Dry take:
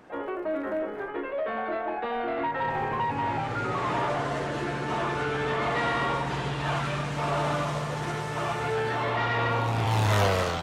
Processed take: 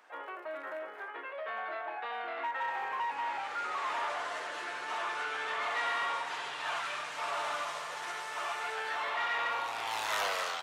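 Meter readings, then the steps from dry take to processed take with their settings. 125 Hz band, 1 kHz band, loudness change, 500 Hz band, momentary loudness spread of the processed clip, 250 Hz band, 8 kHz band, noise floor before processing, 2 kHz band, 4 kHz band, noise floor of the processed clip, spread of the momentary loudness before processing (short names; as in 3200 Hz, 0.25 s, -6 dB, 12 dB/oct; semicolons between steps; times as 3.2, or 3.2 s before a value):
under -35 dB, -6.0 dB, -7.0 dB, -12.5 dB, 9 LU, -23.5 dB, -3.0 dB, -34 dBFS, -3.0 dB, -3.0 dB, -44 dBFS, 6 LU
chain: HPF 950 Hz 12 dB/oct; in parallel at -6.5 dB: hard clip -27 dBFS, distortion -17 dB; on the sum: gain -6 dB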